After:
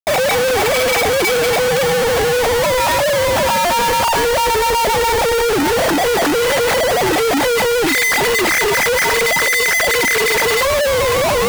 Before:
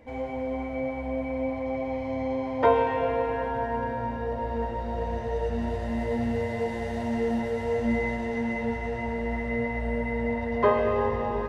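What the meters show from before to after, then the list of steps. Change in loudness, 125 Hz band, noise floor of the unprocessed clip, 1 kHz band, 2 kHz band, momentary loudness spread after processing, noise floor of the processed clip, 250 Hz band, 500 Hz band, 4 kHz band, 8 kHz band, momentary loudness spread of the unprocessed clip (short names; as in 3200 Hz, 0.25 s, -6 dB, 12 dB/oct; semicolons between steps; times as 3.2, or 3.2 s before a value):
+14.5 dB, +6.0 dB, -33 dBFS, +13.5 dB, +20.5 dB, 2 LU, -15 dBFS, +5.5 dB, +13.0 dB, +30.5 dB, n/a, 7 LU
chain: sine-wave speech; in parallel at -9 dB: bit-crush 5-bit; on the sum: overdrive pedal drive 19 dB, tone 1700 Hz, clips at -11 dBFS; Schmitt trigger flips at -35.5 dBFS; gain +6 dB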